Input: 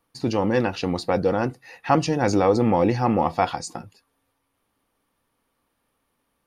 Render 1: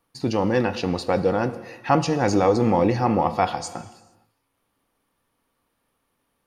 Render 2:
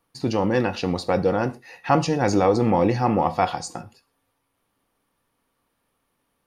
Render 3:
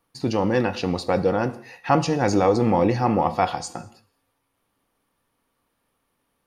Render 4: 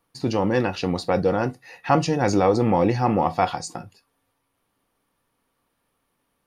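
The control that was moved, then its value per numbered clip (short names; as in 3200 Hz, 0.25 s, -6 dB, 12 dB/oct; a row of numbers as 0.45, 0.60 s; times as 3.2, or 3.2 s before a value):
non-linear reverb, gate: 490, 150, 250, 80 ms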